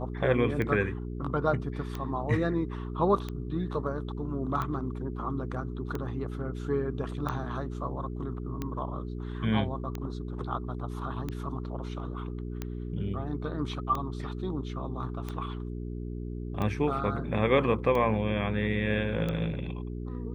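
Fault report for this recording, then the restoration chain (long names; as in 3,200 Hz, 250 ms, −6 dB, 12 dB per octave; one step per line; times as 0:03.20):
mains hum 60 Hz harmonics 7 −36 dBFS
scratch tick 45 rpm −20 dBFS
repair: click removal
hum removal 60 Hz, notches 7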